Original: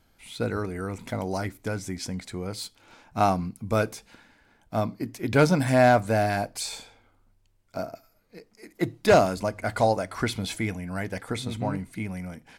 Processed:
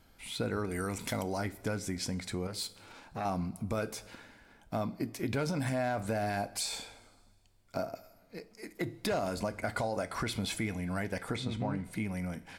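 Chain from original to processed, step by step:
0:00.71–0:01.23: high-shelf EQ 2,800 Hz +11.5 dB
brickwall limiter −19.5 dBFS, peak gain reduction 10 dB
0:11.36–0:11.84: high-frequency loss of the air 72 metres
convolution reverb, pre-delay 3 ms, DRR 13 dB
downward compressor 2 to 1, threshold −36 dBFS, peak gain reduction 7.5 dB
notch filter 6,300 Hz, Q 27
0:02.47–0:03.25: saturating transformer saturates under 830 Hz
level +1.5 dB

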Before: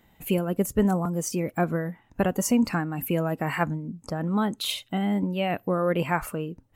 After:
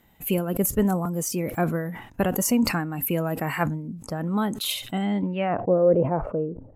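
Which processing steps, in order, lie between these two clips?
low-pass filter sweep 13,000 Hz → 560 Hz, 0:04.86–0:05.73
level that may fall only so fast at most 88 dB per second

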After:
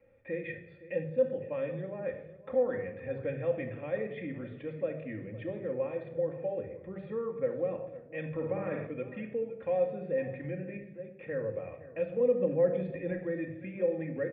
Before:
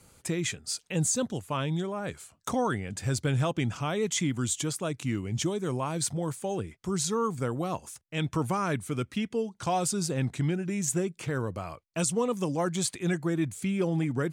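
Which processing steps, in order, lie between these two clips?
on a send: single-tap delay 512 ms −17.5 dB
0:10.77–0:11.18: on the sum: output level in coarse steps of 19 dB
0:12.20–0:13.12: low-shelf EQ 290 Hz +10.5 dB
rectangular room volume 2,300 cubic metres, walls furnished, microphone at 2.2 metres
in parallel at −2 dB: brickwall limiter −19 dBFS, peak gain reduction 10 dB
on the sum: formant resonators in series e
0:08.33–0:08.87: flutter between parallel walls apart 9.2 metres, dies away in 0.65 s

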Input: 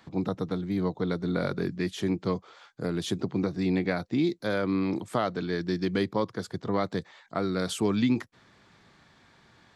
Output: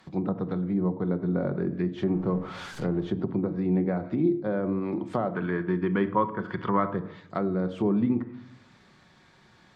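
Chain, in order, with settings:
0:02.03–0:03.10: converter with a step at zero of −36 dBFS
0:05.30–0:06.96: gain on a spectral selection 900–3,500 Hz +12 dB
convolution reverb RT60 0.70 s, pre-delay 5 ms, DRR 8 dB
treble cut that deepens with the level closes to 960 Hz, closed at −23.5 dBFS

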